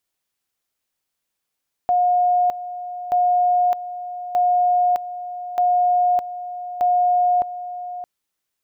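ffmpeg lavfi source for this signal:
ffmpeg -f lavfi -i "aevalsrc='pow(10,(-14-13.5*gte(mod(t,1.23),0.61))/20)*sin(2*PI*717*t)':duration=6.15:sample_rate=44100" out.wav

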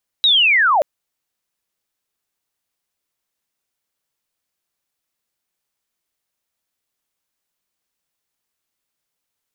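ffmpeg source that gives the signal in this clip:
ffmpeg -f lavfi -i "aevalsrc='pow(10,(-10-1.5*t/0.58)/20)*sin(2*PI*(3900*t-3370*t*t/(2*0.58)))':duration=0.58:sample_rate=44100" out.wav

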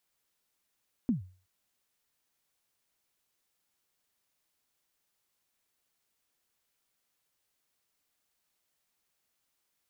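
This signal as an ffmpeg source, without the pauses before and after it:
ffmpeg -f lavfi -i "aevalsrc='0.0891*pow(10,-3*t/0.39)*sin(2*PI*(270*0.129/log(92/270)*(exp(log(92/270)*min(t,0.129)/0.129)-1)+92*max(t-0.129,0)))':duration=0.37:sample_rate=44100" out.wav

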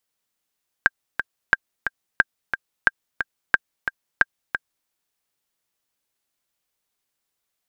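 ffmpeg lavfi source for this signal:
ffmpeg -f lavfi -i "aevalsrc='pow(10,(-1-8.5*gte(mod(t,2*60/179),60/179))/20)*sin(2*PI*1590*mod(t,60/179))*exp(-6.91*mod(t,60/179)/0.03)':duration=4.02:sample_rate=44100" out.wav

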